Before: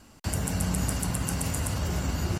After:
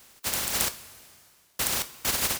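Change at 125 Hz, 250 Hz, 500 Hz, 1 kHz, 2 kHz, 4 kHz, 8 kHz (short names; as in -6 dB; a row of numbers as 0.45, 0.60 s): -17.5, -12.0, -3.0, 0.0, +4.0, +8.0, +4.0 dB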